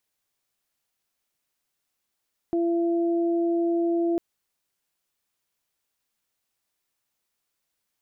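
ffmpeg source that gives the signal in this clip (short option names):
-f lavfi -i "aevalsrc='0.0891*sin(2*PI*339*t)+0.0266*sin(2*PI*678*t)':d=1.65:s=44100"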